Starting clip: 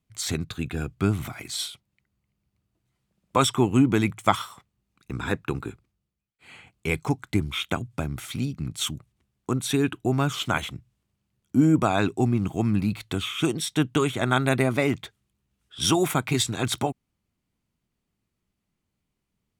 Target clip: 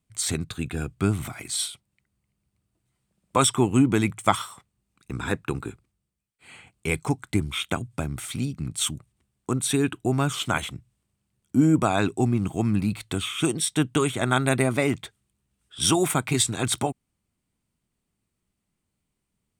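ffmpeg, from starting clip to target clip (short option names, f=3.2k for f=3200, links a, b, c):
-af "equalizer=f=8.6k:t=o:w=0.27:g=10.5"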